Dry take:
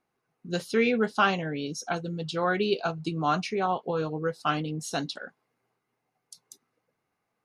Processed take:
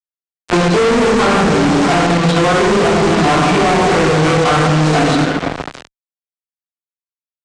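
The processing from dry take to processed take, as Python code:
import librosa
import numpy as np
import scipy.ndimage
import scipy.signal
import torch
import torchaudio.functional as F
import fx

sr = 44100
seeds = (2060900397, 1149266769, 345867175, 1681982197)

p1 = fx.halfwave_hold(x, sr)
p2 = fx.echo_stepped(p1, sr, ms=157, hz=250.0, octaves=0.7, feedback_pct=70, wet_db=-4.5)
p3 = fx.env_lowpass_down(p2, sr, base_hz=1600.0, full_db=-18.0)
p4 = fx.room_shoebox(p3, sr, seeds[0], volume_m3=720.0, walls='mixed', distance_m=3.4)
p5 = fx.level_steps(p4, sr, step_db=20)
p6 = p4 + (p5 * librosa.db_to_amplitude(2.0))
p7 = scipy.signal.sosfilt(scipy.signal.butter(4, 150.0, 'highpass', fs=sr, output='sos'), p6)
p8 = fx.peak_eq(p7, sr, hz=5900.0, db=-14.5, octaves=0.54)
p9 = fx.hum_notches(p8, sr, base_hz=60, count=7)
p10 = fx.fuzz(p9, sr, gain_db=22.0, gate_db=-25.0)
p11 = scipy.signal.sosfilt(scipy.signal.butter(6, 8900.0, 'lowpass', fs=sr, output='sos'), p10)
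p12 = fx.band_squash(p11, sr, depth_pct=70)
y = p12 * librosa.db_to_amplitude(3.0)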